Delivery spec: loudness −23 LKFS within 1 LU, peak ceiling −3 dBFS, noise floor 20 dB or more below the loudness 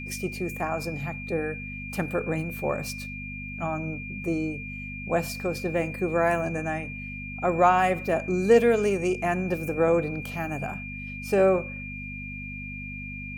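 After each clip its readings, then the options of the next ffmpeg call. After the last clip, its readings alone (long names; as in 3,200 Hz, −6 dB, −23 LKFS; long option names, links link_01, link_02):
mains hum 50 Hz; hum harmonics up to 250 Hz; level of the hum −36 dBFS; interfering tone 2,400 Hz; level of the tone −37 dBFS; integrated loudness −27.0 LKFS; sample peak −7.0 dBFS; target loudness −23.0 LKFS
→ -af "bandreject=frequency=50:width_type=h:width=4,bandreject=frequency=100:width_type=h:width=4,bandreject=frequency=150:width_type=h:width=4,bandreject=frequency=200:width_type=h:width=4,bandreject=frequency=250:width_type=h:width=4"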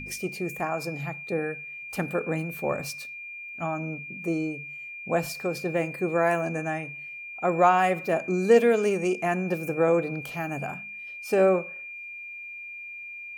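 mains hum none found; interfering tone 2,400 Hz; level of the tone −37 dBFS
→ -af "bandreject=frequency=2400:width=30"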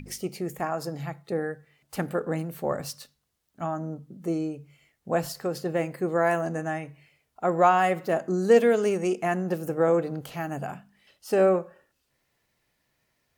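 interfering tone none found; integrated loudness −26.5 LKFS; sample peak −7.5 dBFS; target loudness −23.0 LKFS
→ -af "volume=3.5dB"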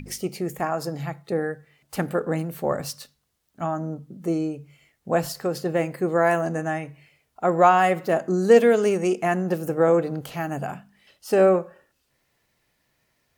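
integrated loudness −23.5 LKFS; sample peak −4.0 dBFS; background noise floor −72 dBFS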